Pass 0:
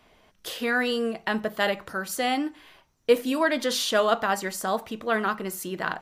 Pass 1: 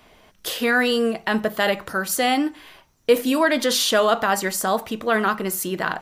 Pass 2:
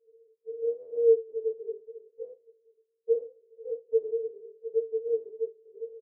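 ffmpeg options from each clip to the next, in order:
-filter_complex "[0:a]highshelf=f=9.3k:g=5,asplit=2[a][b];[b]alimiter=limit=-18dB:level=0:latency=1:release=46,volume=0.5dB[c];[a][c]amix=inputs=2:normalize=0"
-af "aresample=11025,asoftclip=type=tanh:threshold=-17.5dB,aresample=44100,asuperpass=centerf=450:order=20:qfactor=5.2,afftfilt=real='re*1.73*eq(mod(b,3),0)':imag='im*1.73*eq(mod(b,3),0)':win_size=2048:overlap=0.75,volume=7.5dB"

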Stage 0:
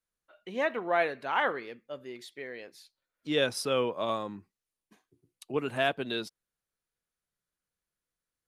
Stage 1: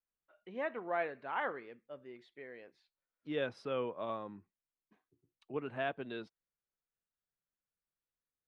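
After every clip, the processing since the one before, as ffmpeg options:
-af "lowpass=2.3k,volume=-8dB"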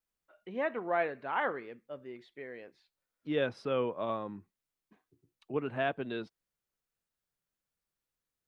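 -af "lowshelf=f=370:g=3,volume=4dB"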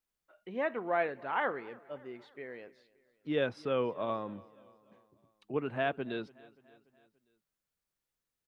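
-af "aecho=1:1:289|578|867|1156:0.0708|0.0389|0.0214|0.0118"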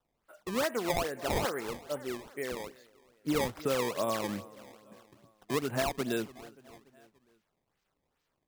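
-af "acompressor=threshold=-35dB:ratio=6,acrusher=samples=18:mix=1:aa=0.000001:lfo=1:lforange=28.8:lforate=2.4,volume=8dB"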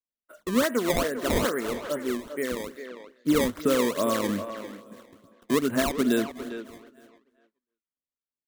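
-filter_complex "[0:a]agate=range=-33dB:threshold=-55dB:ratio=3:detection=peak,equalizer=f=125:t=o:w=0.33:g=-10,equalizer=f=250:t=o:w=0.33:g=7,equalizer=f=800:t=o:w=0.33:g=-12,equalizer=f=2.5k:t=o:w=0.33:g=-5,equalizer=f=5k:t=o:w=0.33:g=-5,asplit=2[a][b];[b]adelay=400,highpass=300,lowpass=3.4k,asoftclip=type=hard:threshold=-27.5dB,volume=-9dB[c];[a][c]amix=inputs=2:normalize=0,volume=7dB"

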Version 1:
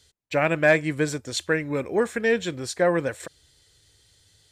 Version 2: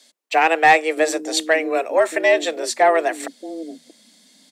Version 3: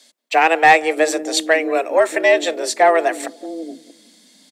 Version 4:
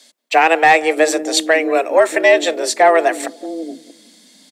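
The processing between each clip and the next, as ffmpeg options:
-filter_complex "[0:a]afreqshift=160,acrossover=split=320[a][b];[a]adelay=630[c];[c][b]amix=inputs=2:normalize=0,acontrast=87"
-filter_complex "[0:a]asplit=2[a][b];[b]adelay=181,lowpass=f=860:p=1,volume=-18dB,asplit=2[c][d];[d]adelay=181,lowpass=f=860:p=1,volume=0.44,asplit=2[e][f];[f]adelay=181,lowpass=f=860:p=1,volume=0.44,asplit=2[g][h];[h]adelay=181,lowpass=f=860:p=1,volume=0.44[i];[a][c][e][g][i]amix=inputs=5:normalize=0,volume=2dB"
-af "alimiter=level_in=4dB:limit=-1dB:release=50:level=0:latency=1,volume=-1dB"

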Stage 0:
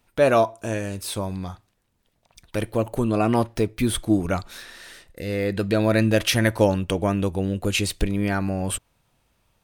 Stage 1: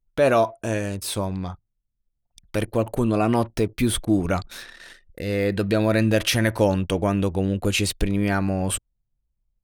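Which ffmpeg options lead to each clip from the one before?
-filter_complex "[0:a]anlmdn=0.158,asplit=2[a][b];[b]alimiter=limit=-14.5dB:level=0:latency=1:release=55,volume=2.5dB[c];[a][c]amix=inputs=2:normalize=0,volume=-5.5dB"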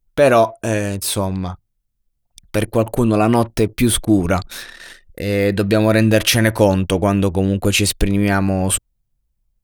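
-af "highshelf=f=9.1k:g=5.5,volume=6dB"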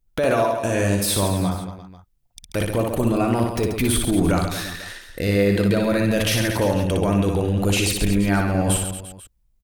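-filter_complex "[0:a]alimiter=limit=-13.5dB:level=0:latency=1:release=14,asplit=2[a][b];[b]aecho=0:1:60|135|228.8|345.9|492.4:0.631|0.398|0.251|0.158|0.1[c];[a][c]amix=inputs=2:normalize=0"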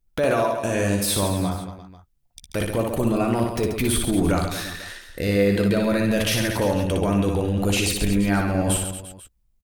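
-filter_complex "[0:a]asplit=2[a][b];[b]adelay=14,volume=-12.5dB[c];[a][c]amix=inputs=2:normalize=0,volume=-1.5dB"

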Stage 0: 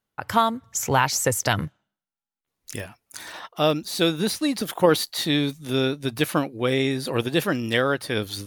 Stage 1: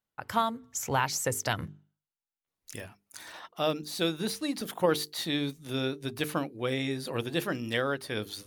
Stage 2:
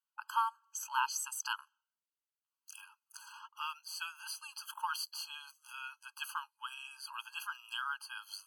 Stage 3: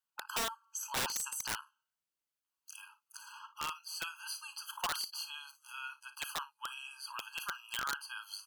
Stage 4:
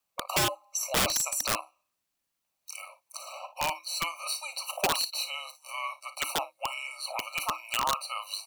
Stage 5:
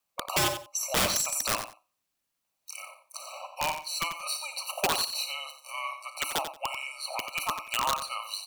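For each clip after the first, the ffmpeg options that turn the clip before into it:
-af "bandreject=f=50:t=h:w=6,bandreject=f=100:t=h:w=6,bandreject=f=150:t=h:w=6,bandreject=f=200:t=h:w=6,bandreject=f=250:t=h:w=6,bandreject=f=300:t=h:w=6,bandreject=f=350:t=h:w=6,bandreject=f=400:t=h:w=6,bandreject=f=450:t=h:w=6,volume=-7.5dB"
-af "afftfilt=real='re*eq(mod(floor(b*sr/1024/830),2),1)':imag='im*eq(mod(floor(b*sr/1024/830),2),1)':win_size=1024:overlap=0.75,volume=-3dB"
-af "aecho=1:1:36|56:0.2|0.188,aeval=exprs='(mod(28.2*val(0)+1,2)-1)/28.2':c=same,volume=1dB"
-af "afreqshift=-320,volume=9dB"
-af "aecho=1:1:90|180:0.335|0.0569"

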